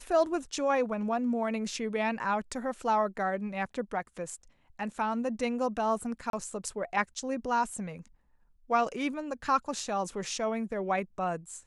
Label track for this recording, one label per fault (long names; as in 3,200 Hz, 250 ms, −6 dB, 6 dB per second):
6.300000	6.330000	drop-out 32 ms